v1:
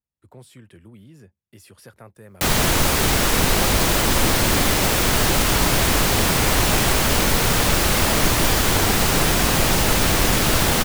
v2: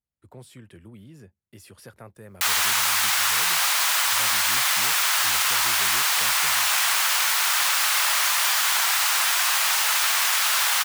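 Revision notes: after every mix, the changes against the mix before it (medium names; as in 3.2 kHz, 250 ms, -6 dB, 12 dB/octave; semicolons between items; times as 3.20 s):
background: add high-pass 970 Hz 24 dB/octave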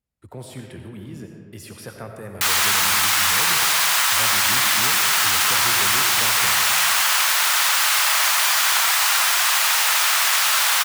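speech +4.5 dB; reverb: on, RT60 1.7 s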